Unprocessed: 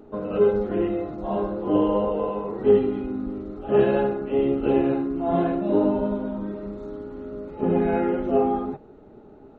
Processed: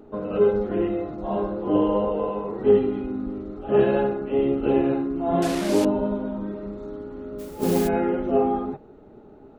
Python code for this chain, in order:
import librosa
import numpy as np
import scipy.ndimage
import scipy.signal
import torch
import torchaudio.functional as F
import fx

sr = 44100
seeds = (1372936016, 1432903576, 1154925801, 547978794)

y = fx.delta_mod(x, sr, bps=64000, step_db=-24.0, at=(5.42, 5.85))
y = fx.mod_noise(y, sr, seeds[0], snr_db=15, at=(7.38, 7.87), fade=0.02)